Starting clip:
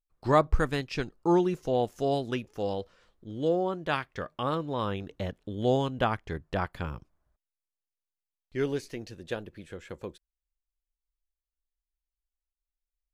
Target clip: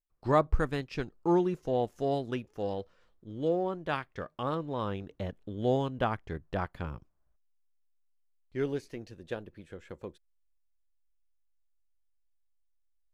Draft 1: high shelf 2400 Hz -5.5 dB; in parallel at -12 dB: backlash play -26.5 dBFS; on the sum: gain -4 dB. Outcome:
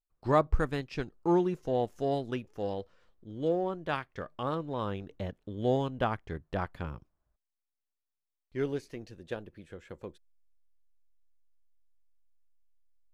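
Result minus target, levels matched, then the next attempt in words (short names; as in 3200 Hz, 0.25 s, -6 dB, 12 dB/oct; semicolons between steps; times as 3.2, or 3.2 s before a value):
backlash: distortion +5 dB
high shelf 2400 Hz -5.5 dB; in parallel at -12 dB: backlash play -32.5 dBFS; on the sum: gain -4 dB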